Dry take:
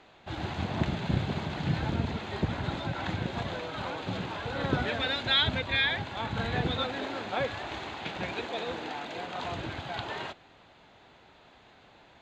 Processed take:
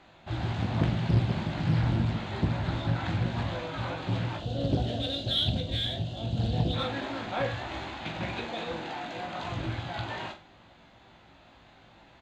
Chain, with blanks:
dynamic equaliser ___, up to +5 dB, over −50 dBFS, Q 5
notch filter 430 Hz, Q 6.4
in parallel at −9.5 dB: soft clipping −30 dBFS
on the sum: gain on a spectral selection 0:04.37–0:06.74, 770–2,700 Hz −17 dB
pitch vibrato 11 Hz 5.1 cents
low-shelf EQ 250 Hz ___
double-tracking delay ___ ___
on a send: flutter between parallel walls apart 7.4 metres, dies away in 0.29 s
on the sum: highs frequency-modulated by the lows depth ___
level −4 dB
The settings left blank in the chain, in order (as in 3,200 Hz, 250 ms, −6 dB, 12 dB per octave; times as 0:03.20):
120 Hz, +5.5 dB, 18 ms, −6 dB, 0.51 ms